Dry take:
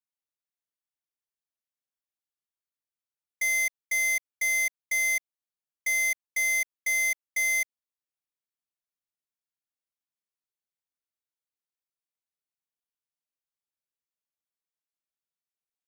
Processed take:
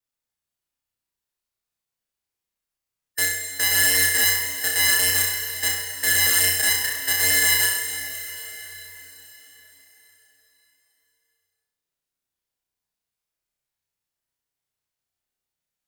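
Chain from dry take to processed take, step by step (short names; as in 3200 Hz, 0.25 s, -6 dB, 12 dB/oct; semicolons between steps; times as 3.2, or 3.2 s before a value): slices in reverse order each 0.116 s, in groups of 3; low shelf 160 Hz +8.5 dB; formant shift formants -3 st; wow and flutter 17 cents; flutter echo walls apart 5.6 m, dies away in 0.71 s; plate-style reverb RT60 4.7 s, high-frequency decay 1×, DRR 6 dB; gain +4 dB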